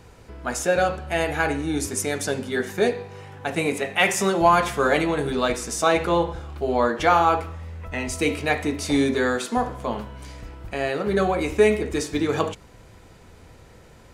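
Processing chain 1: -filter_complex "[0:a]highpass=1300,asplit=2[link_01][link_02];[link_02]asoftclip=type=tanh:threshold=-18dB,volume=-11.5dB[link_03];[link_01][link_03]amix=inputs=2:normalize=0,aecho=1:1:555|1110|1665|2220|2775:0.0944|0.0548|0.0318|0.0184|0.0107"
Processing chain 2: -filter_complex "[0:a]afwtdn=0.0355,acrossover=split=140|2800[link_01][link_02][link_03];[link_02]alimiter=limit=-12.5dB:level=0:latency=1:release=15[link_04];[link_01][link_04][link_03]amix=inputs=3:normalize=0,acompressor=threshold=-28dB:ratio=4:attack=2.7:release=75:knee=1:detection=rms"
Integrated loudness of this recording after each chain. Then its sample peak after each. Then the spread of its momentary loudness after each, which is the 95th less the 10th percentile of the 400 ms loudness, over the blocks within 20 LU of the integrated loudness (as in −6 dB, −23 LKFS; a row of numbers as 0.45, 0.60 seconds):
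−27.0, −33.0 LKFS; −5.5, −17.5 dBFS; 15, 7 LU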